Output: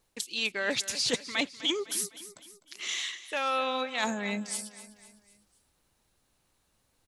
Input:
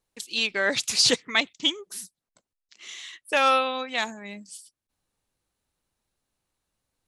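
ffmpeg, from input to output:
ffmpeg -i in.wav -af "areverse,acompressor=threshold=-35dB:ratio=8,areverse,aecho=1:1:253|506|759|1012:0.178|0.0836|0.0393|0.0185,volume=8dB" out.wav

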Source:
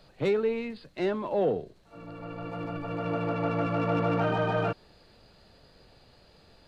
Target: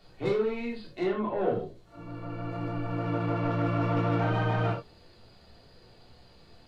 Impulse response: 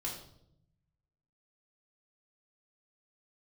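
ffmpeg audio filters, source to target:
-filter_complex "[0:a]asettb=1/sr,asplit=3[link_01][link_02][link_03];[link_01]atrim=end=1.034[link_04];[link_02]atrim=start=1.03:end=1.48,asetpts=PTS-STARTPTS,afade=type=in:duration=0.004:curve=qsin,afade=type=out:start_time=0.446:duration=0.004:curve=qsin,lowpass=frequency=3300:width=0.5412,lowpass=frequency=3300:width=1.3066[link_05];[link_03]atrim=start=1.476[link_06];[link_04][link_05]acrossfade=duration=0.004:curve1=hsin:curve2=qsin[link_07];[link_07][link_06]acrossfade=duration=0.004:curve1=qsin:curve2=hsin,asoftclip=type=tanh:threshold=-21.5dB[link_08];[1:a]atrim=start_sample=2205,atrim=end_sample=4410[link_09];[link_08][link_09]afir=irnorm=-1:irlink=0"

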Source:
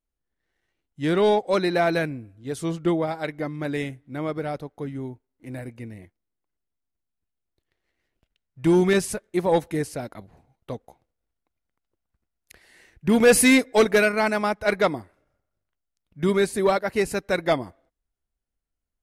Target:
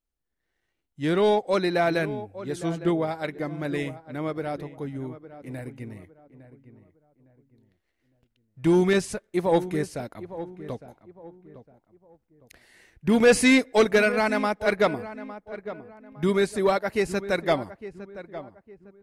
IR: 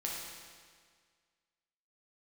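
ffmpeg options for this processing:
-filter_complex "[0:a]acrossover=split=8800[link_01][link_02];[link_02]acompressor=threshold=-50dB:ratio=4:attack=1:release=60[link_03];[link_01][link_03]amix=inputs=2:normalize=0,asplit=2[link_04][link_05];[link_05]adelay=858,lowpass=frequency=1500:poles=1,volume=-13.5dB,asplit=2[link_06][link_07];[link_07]adelay=858,lowpass=frequency=1500:poles=1,volume=0.34,asplit=2[link_08][link_09];[link_09]adelay=858,lowpass=frequency=1500:poles=1,volume=0.34[link_10];[link_04][link_06][link_08][link_10]amix=inputs=4:normalize=0,volume=-1.5dB"

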